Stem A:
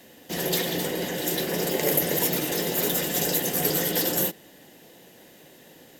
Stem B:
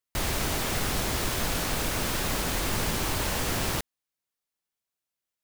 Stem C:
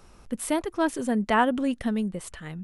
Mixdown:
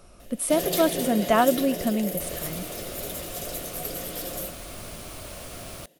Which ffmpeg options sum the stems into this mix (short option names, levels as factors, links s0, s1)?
-filter_complex "[0:a]adelay=200,volume=0.708,afade=t=out:st=1.35:d=0.72:silence=0.375837[s0];[1:a]adelay=2050,volume=0.266[s1];[2:a]volume=1.12[s2];[s0][s1][s2]amix=inputs=3:normalize=0,superequalizer=8b=2:9b=0.562:11b=0.631:16b=1.78"